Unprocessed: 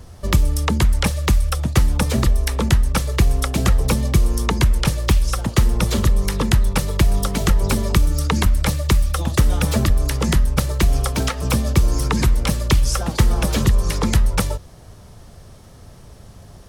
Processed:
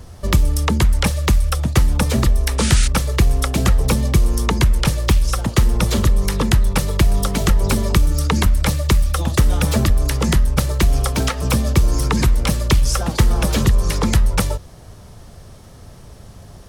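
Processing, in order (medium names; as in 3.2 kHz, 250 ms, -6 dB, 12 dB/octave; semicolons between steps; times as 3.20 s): in parallel at -11 dB: hard clipper -17.5 dBFS, distortion -8 dB; on the sum: painted sound noise, 2.58–2.88 s, 1.2–10 kHz -24 dBFS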